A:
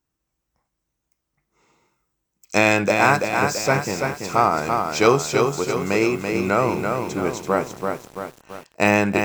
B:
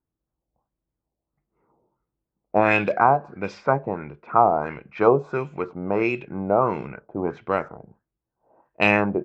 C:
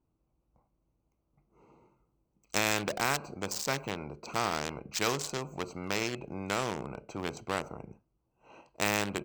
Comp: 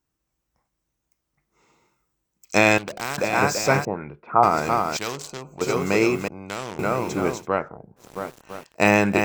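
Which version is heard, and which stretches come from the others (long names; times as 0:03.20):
A
0:02.78–0:03.18: punch in from C
0:03.85–0:04.43: punch in from B
0:04.97–0:05.61: punch in from C
0:06.28–0:06.79: punch in from C
0:07.40–0:08.04: punch in from B, crossfade 0.16 s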